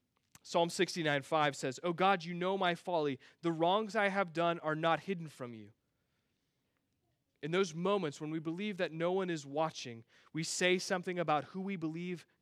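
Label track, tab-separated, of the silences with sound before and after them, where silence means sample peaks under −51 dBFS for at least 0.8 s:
5.690000	7.430000	silence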